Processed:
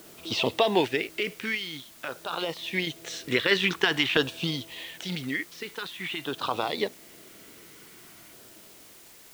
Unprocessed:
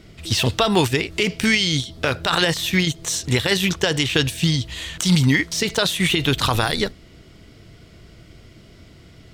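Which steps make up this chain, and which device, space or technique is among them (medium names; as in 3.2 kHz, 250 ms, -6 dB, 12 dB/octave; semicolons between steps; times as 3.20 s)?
shortwave radio (band-pass 340–2800 Hz; tremolo 0.26 Hz, depth 76%; LFO notch saw down 0.48 Hz 430–2300 Hz; white noise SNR 21 dB); trim +1 dB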